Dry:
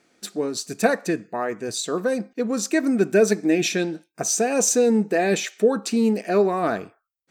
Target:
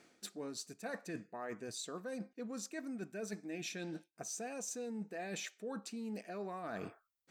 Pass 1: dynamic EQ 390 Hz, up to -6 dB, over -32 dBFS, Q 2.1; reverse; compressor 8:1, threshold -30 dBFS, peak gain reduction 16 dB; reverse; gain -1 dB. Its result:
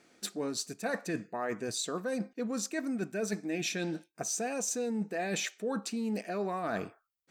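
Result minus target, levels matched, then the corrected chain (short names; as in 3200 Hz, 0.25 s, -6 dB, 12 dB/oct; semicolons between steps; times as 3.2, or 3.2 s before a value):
compressor: peak gain reduction -9 dB
dynamic EQ 390 Hz, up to -6 dB, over -32 dBFS, Q 2.1; reverse; compressor 8:1, threshold -40.5 dBFS, peak gain reduction 25.5 dB; reverse; gain -1 dB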